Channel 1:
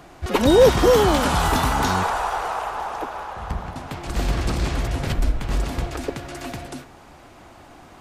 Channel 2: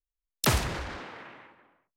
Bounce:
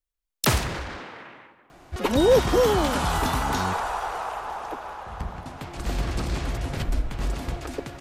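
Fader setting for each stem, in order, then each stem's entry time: −4.5, +3.0 decibels; 1.70, 0.00 seconds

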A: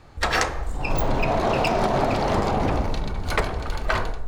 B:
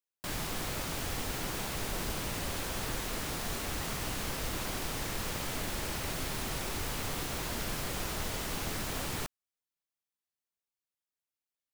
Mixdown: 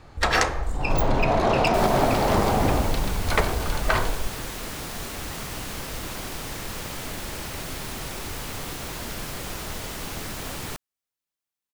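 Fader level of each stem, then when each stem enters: +1.0, +2.5 decibels; 0.00, 1.50 seconds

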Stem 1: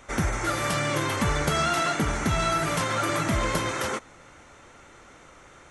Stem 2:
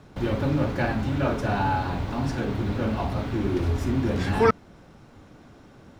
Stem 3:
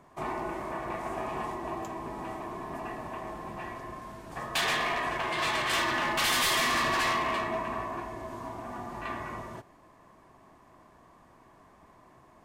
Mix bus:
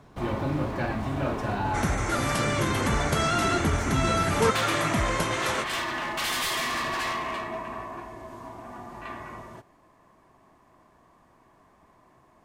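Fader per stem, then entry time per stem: −1.0, −4.5, −2.0 decibels; 1.65, 0.00, 0.00 seconds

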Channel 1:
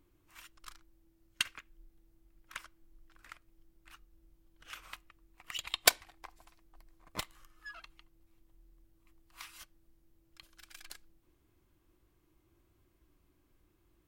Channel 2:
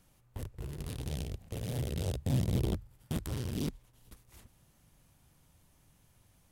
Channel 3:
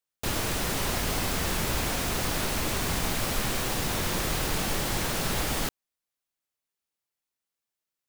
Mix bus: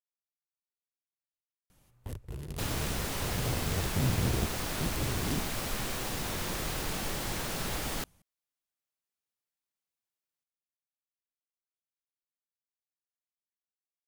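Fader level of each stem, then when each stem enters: muted, +0.5 dB, −6.0 dB; muted, 1.70 s, 2.35 s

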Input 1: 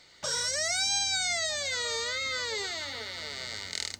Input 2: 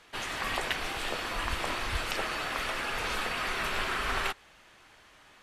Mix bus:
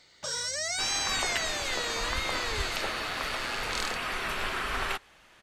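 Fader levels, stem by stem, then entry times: −2.5, −0.5 decibels; 0.00, 0.65 seconds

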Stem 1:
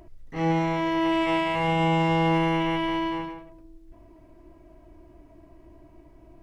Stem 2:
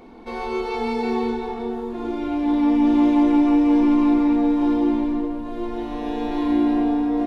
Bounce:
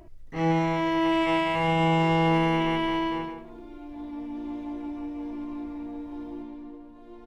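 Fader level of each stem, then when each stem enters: 0.0, −18.5 decibels; 0.00, 1.50 seconds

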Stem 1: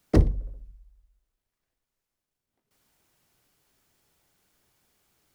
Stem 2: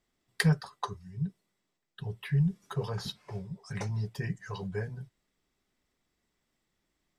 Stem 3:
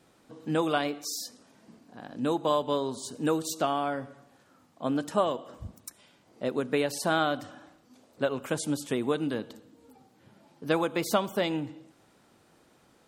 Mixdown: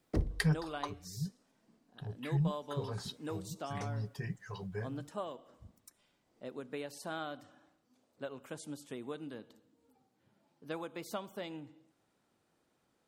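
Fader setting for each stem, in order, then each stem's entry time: −13.5, −5.5, −14.5 decibels; 0.00, 0.00, 0.00 seconds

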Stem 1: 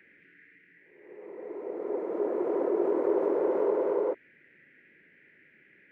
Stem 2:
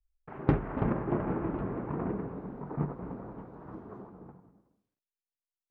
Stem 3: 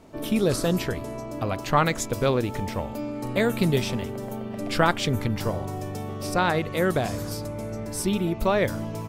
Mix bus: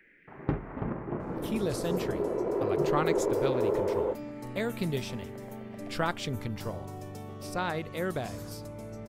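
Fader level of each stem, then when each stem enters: −1.5, −4.5, −9.0 decibels; 0.00, 0.00, 1.20 seconds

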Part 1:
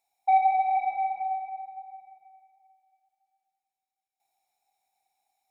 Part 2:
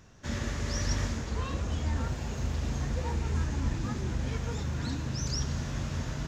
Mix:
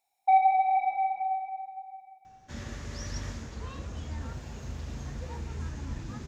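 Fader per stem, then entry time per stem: 0.0, −6.5 decibels; 0.00, 2.25 seconds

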